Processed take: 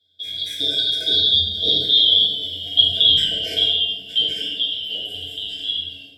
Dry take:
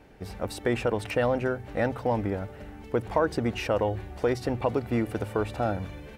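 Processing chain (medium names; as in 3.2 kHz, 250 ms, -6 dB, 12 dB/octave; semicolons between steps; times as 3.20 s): four frequency bands reordered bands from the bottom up 2413; Doppler pass-by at 2.41 s, 32 m/s, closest 27 m; high-pass 70 Hz; gate -52 dBFS, range -18 dB; rippled EQ curve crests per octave 1.7, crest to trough 11 dB; in parallel at -1.5 dB: compression, threshold -41 dBFS, peak gain reduction 22 dB; on the sum: brick-wall FIR band-stop 740–1500 Hz; filtered feedback delay 79 ms, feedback 66%, low-pass 1.3 kHz, level -4 dB; gated-style reverb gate 230 ms falling, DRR -5.5 dB; trim +2 dB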